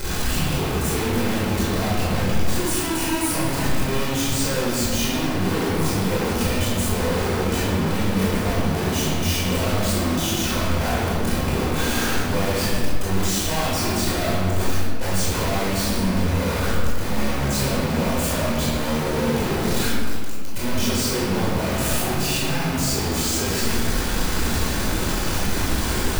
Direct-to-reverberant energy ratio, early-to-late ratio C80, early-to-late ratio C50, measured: -8.0 dB, 0.5 dB, -2.0 dB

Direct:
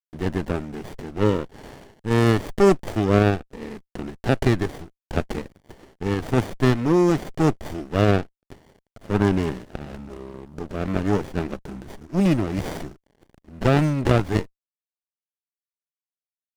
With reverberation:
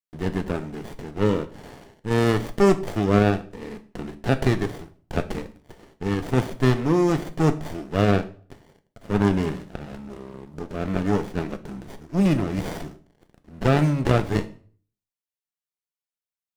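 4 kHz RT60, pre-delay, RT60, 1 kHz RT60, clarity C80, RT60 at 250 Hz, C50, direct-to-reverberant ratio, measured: 0.40 s, 3 ms, 0.45 s, 0.45 s, 19.5 dB, 0.50 s, 16.0 dB, 8.5 dB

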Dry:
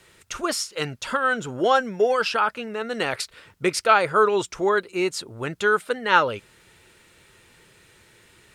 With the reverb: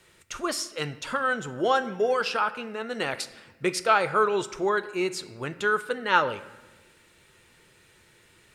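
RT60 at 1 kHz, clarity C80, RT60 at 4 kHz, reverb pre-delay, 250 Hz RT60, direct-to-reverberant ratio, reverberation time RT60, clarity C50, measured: 1.1 s, 17.0 dB, 0.85 s, 3 ms, 1.5 s, 11.5 dB, 1.2 s, 15.0 dB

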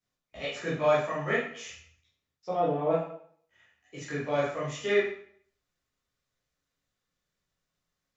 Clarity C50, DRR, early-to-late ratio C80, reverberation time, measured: 2.0 dB, -9.0 dB, 7.0 dB, 0.60 s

